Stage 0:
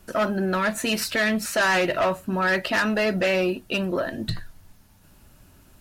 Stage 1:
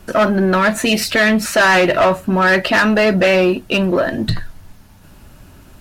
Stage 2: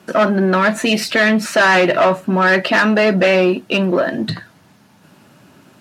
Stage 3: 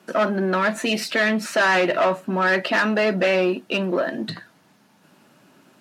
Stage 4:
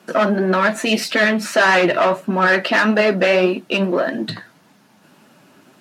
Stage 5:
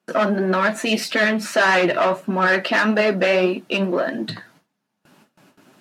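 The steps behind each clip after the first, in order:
high shelf 5200 Hz -6.5 dB; in parallel at -7 dB: hard clip -27.5 dBFS, distortion -7 dB; on the sum: spectral gain 0.85–1.11, 840–1800 Hz -10 dB; gain +8 dB
HPF 140 Hz 24 dB/oct; high shelf 10000 Hz -11.5 dB
HPF 180 Hz 12 dB/oct; gain -6 dB
flange 1.7 Hz, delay 3.4 ms, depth 7 ms, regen +61%; gain +8.5 dB
gate with hold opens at -40 dBFS; gain -2.5 dB

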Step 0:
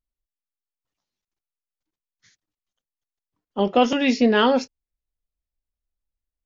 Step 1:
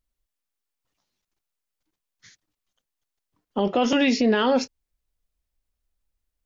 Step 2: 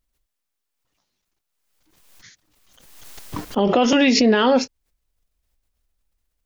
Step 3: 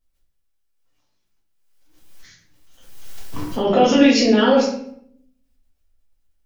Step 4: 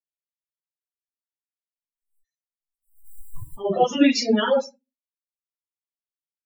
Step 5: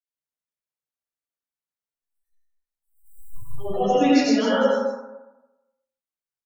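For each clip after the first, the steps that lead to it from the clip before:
in parallel at +1.5 dB: compressor, threshold -25 dBFS, peak gain reduction 12.5 dB; on the sum: limiter -12 dBFS, peak gain reduction 8.5 dB
backwards sustainer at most 43 dB/s; gain +4 dB
shoebox room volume 120 m³, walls mixed, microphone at 1.6 m; gain -6.5 dB
per-bin expansion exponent 3
echo 0.157 s -7.5 dB; plate-style reverb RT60 0.99 s, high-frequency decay 0.3×, pre-delay 80 ms, DRR -6.5 dB; gain -7.5 dB

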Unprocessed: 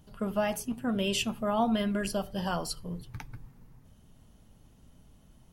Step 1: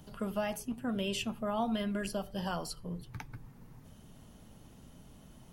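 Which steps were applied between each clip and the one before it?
three-band squash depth 40%; gain -4.5 dB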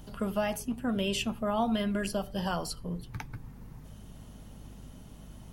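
hum 50 Hz, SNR 16 dB; gain +4 dB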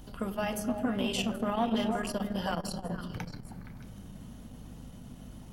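delay with a stepping band-pass 0.156 s, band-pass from 220 Hz, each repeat 1.4 oct, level -1 dB; on a send at -9 dB: reverb RT60 2.8 s, pre-delay 3 ms; on the sum: core saturation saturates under 460 Hz

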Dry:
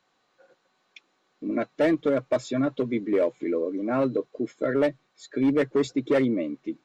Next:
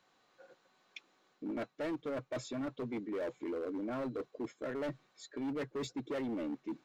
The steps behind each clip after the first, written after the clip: reverse; compressor 4:1, threshold -34 dBFS, peak gain reduction 13 dB; reverse; hard clip -33 dBFS, distortion -12 dB; gain -1 dB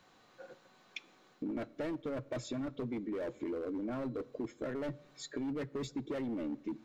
low shelf 210 Hz +9 dB; compressor 4:1, threshold -43 dBFS, peak gain reduction 10 dB; on a send at -20.5 dB: reverb RT60 0.95 s, pre-delay 3 ms; on the sum: gain +6 dB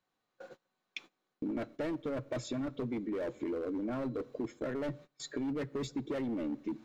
gate -52 dBFS, range -22 dB; gain +2 dB

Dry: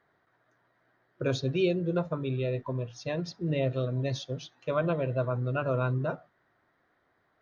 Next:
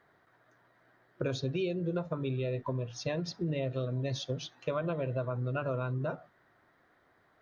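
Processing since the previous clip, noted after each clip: compressor, threshold -34 dBFS, peak gain reduction 12 dB; gain +4 dB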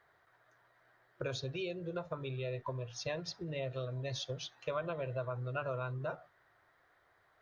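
bell 230 Hz -14.5 dB 1.2 oct; gain -1 dB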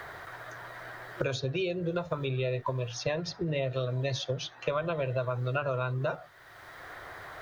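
three-band squash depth 70%; gain +7.5 dB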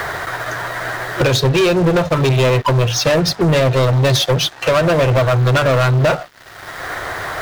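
sample leveller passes 5; upward expander 1.5:1, over -34 dBFS; gain +6.5 dB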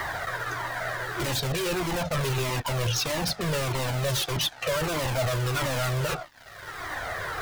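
in parallel at -4 dB: wrapped overs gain 13.5 dB; on the sum: cascading flanger falling 1.6 Hz; gain -8 dB

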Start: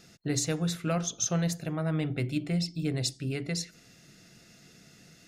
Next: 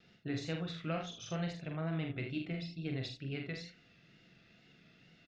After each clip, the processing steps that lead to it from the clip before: ladder low-pass 3900 Hz, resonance 35%; early reflections 44 ms -4.5 dB, 78 ms -8.5 dB; vibrato 2.2 Hz 53 cents; gain -1.5 dB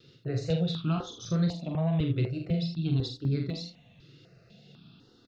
graphic EQ 125/250/500/1000/2000/4000 Hz +10/+5/+6/+6/-9/+9 dB; step phaser 4 Hz 200–2900 Hz; gain +4 dB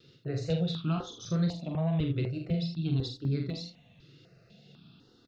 notches 60/120 Hz; gain -1.5 dB

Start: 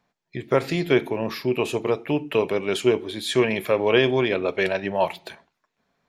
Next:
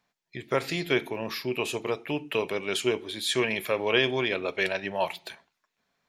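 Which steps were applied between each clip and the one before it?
tilt shelf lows -4.5 dB, about 1300 Hz; gain -3.5 dB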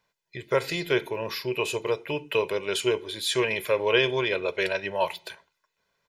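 comb 2 ms, depth 62%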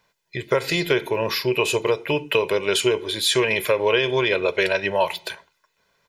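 compressor, threshold -24 dBFS, peak gain reduction 8 dB; gain +8.5 dB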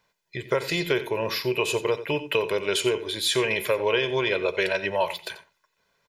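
echo 89 ms -15 dB; gain -4 dB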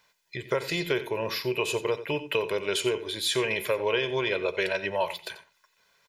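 mismatched tape noise reduction encoder only; gain -3 dB

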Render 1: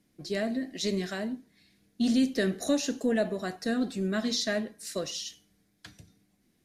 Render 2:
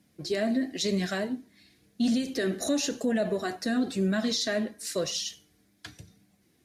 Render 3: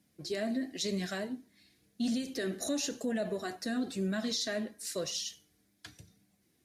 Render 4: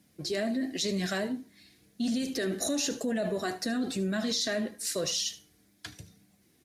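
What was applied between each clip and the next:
HPF 57 Hz; limiter -23.5 dBFS, peak gain reduction 7.5 dB; flange 0.96 Hz, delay 1.1 ms, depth 2.4 ms, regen -53%; gain +8.5 dB
high shelf 5300 Hz +4.5 dB; gain -6.5 dB
in parallel at -2 dB: negative-ratio compressor -37 dBFS, ratio -1; on the sum: echo 76 ms -18 dB

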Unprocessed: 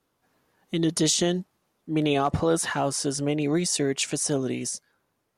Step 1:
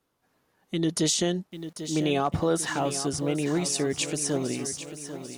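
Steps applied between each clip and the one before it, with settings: lo-fi delay 0.794 s, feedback 55%, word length 8-bit, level -11 dB; gain -2 dB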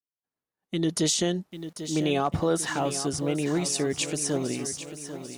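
expander -55 dBFS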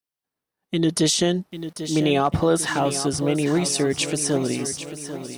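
bell 6900 Hz -6.5 dB 0.2 oct; gain +5.5 dB

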